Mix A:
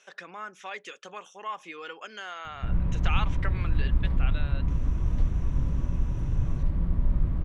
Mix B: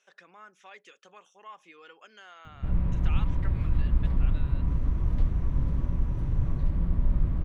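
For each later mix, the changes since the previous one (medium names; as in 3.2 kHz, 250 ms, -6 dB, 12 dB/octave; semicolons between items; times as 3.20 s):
speech -11.0 dB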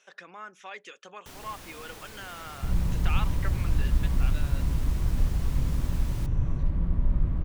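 speech +7.5 dB; first sound: unmuted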